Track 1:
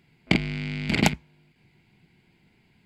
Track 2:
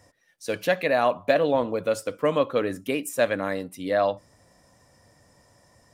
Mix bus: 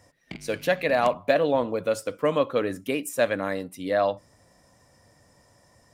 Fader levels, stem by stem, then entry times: -18.0, -0.5 dB; 0.00, 0.00 s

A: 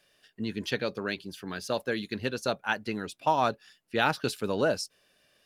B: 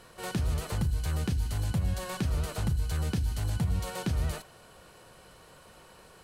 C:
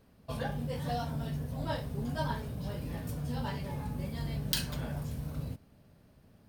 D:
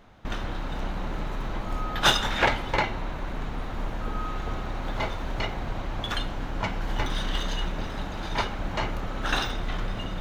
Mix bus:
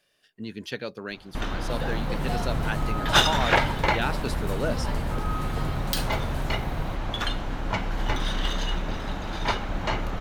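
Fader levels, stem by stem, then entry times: -3.0, -7.0, +2.0, +1.5 dB; 0.00, 2.05, 1.40, 1.10 s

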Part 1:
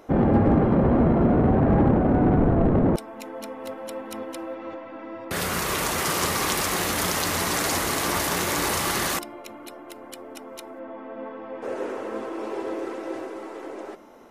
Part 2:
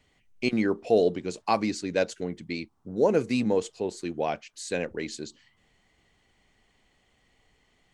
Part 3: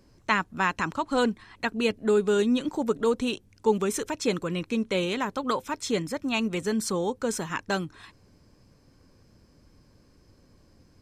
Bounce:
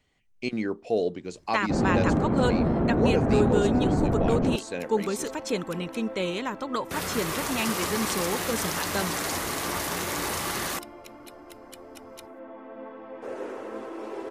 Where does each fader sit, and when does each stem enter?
-5.0, -4.0, -2.5 dB; 1.60, 0.00, 1.25 s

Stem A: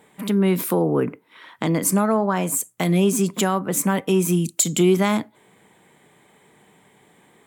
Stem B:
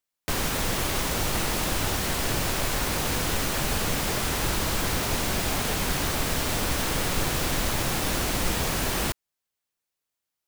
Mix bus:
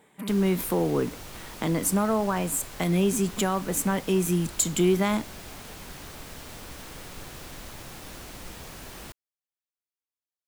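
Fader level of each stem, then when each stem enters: -5.0, -15.5 dB; 0.00, 0.00 s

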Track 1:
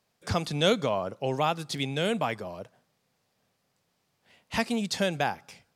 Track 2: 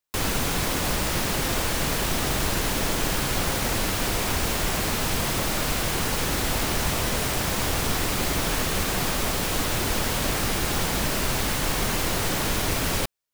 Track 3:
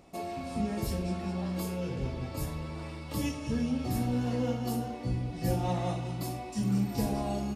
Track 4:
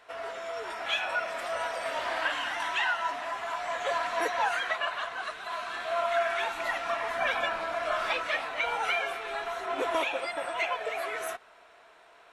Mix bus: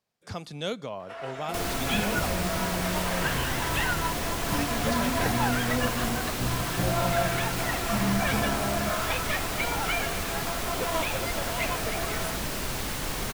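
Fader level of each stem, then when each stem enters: -8.5, -6.5, +0.5, -1.0 dB; 0.00, 1.40, 1.35, 1.00 s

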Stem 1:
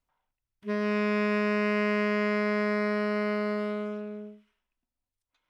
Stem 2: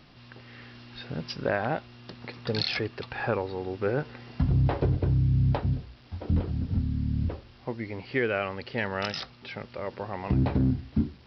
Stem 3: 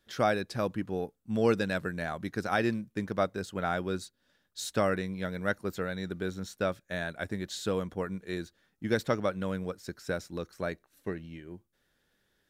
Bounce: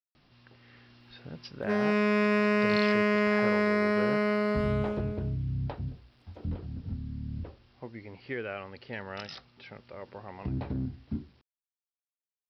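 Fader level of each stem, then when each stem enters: +1.5 dB, -9.0 dB, off; 1.00 s, 0.15 s, off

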